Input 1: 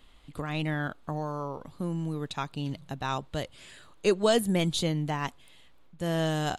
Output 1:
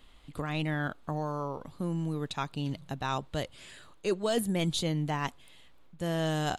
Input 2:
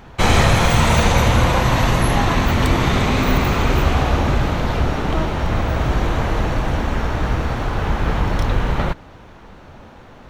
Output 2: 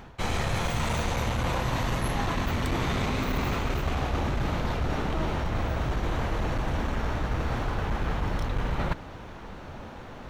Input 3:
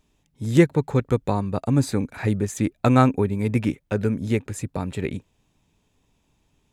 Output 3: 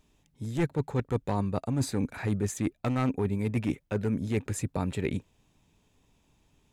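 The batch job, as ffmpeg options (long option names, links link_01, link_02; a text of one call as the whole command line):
ffmpeg -i in.wav -af "aeval=exprs='clip(val(0),-1,0.188)':channel_layout=same,areverse,acompressor=threshold=-25dB:ratio=6,areverse" out.wav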